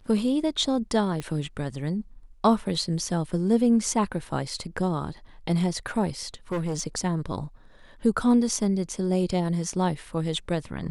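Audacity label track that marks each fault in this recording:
1.200000	1.200000	pop -19 dBFS
6.520000	6.810000	clipped -24 dBFS

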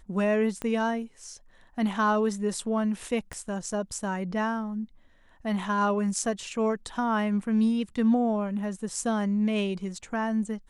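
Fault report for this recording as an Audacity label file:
0.620000	0.620000	pop -19 dBFS
3.330000	3.330000	pop -23 dBFS

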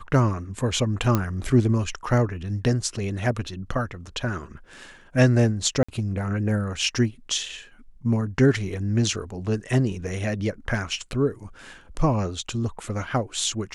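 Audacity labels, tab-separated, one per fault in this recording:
1.150000	1.150000	pop -8 dBFS
5.830000	5.880000	gap 55 ms

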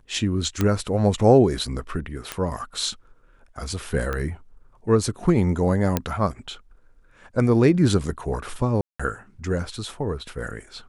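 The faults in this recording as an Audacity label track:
0.610000	0.610000	pop -8 dBFS
2.320000	2.320000	pop -11 dBFS
4.130000	4.130000	pop -15 dBFS
5.970000	5.970000	pop -6 dBFS
8.810000	8.990000	gap 0.185 s

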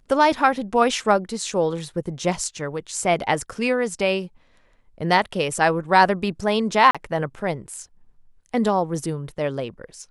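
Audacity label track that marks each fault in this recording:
6.910000	6.950000	gap 36 ms

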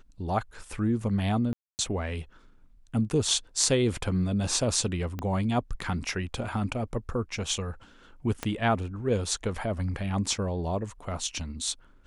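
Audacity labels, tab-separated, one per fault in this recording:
1.530000	1.790000	gap 0.259 s
5.190000	5.190000	pop -20 dBFS
8.430000	8.430000	pop -15 dBFS

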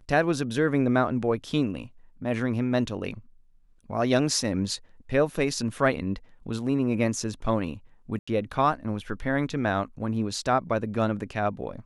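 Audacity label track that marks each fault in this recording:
8.190000	8.280000	gap 85 ms

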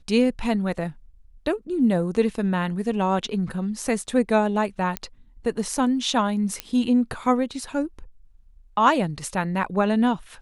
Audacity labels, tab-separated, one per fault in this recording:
4.970000	4.970000	pop -10 dBFS
6.600000	6.600000	pop -11 dBFS

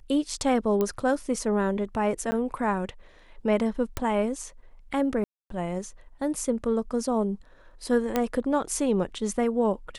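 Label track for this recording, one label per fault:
0.810000	0.810000	pop -14 dBFS
2.310000	2.320000	gap 10 ms
3.970000	3.970000	pop
5.240000	5.500000	gap 0.263 s
8.160000	8.160000	pop -10 dBFS

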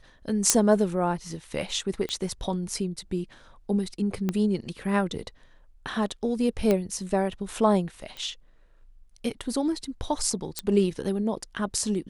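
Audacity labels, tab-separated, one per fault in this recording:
0.500000	0.500000	pop -2 dBFS
2.090000	2.090000	pop -17 dBFS
4.290000	4.290000	pop -14 dBFS
6.710000	6.710000	pop -11 dBFS
8.170000	8.170000	pop -24 dBFS
10.590000	10.590000	pop -11 dBFS

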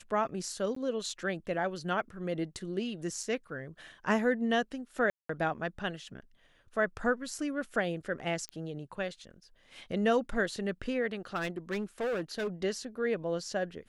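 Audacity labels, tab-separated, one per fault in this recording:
0.750000	0.760000	gap 14 ms
3.230000	3.230000	gap 3.4 ms
5.100000	5.290000	gap 0.194 s
8.490000	8.490000	pop -25 dBFS
11.350000	12.480000	clipped -29.5 dBFS

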